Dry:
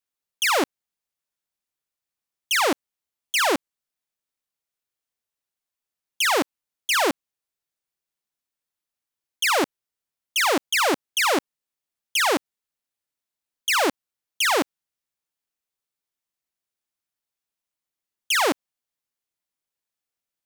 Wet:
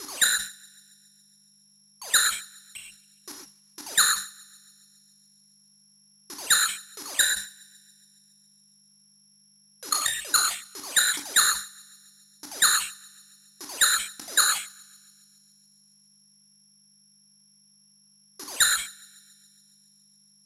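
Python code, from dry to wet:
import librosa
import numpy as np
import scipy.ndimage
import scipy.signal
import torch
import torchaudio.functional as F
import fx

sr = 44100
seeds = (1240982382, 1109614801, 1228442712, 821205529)

y = fx.block_reorder(x, sr, ms=84.0, group=8)
y = 10.0 ** (-31.5 / 20.0) * np.tanh(y / 10.0 ** (-31.5 / 20.0))
y = fx.peak_eq(y, sr, hz=1500.0, db=11.0, octaves=2.0)
y = fx.level_steps(y, sr, step_db=23)
y = fx.dmg_buzz(y, sr, base_hz=50.0, harmonics=4, level_db=-69.0, tilt_db=-3, odd_only=False)
y = (np.kron(y[::8], np.eye(8)[0]) * 8)[:len(y)]
y = scipy.signal.sosfilt(scipy.signal.butter(4, 11000.0, 'lowpass', fs=sr, output='sos'), y)
y = fx.hum_notches(y, sr, base_hz=50, count=2)
y = fx.echo_thinned(y, sr, ms=139, feedback_pct=70, hz=1200.0, wet_db=-24.0)
y = fx.rev_gated(y, sr, seeds[0], gate_ms=150, shape='flat', drr_db=-0.5)
y = fx.sustainer(y, sr, db_per_s=130.0)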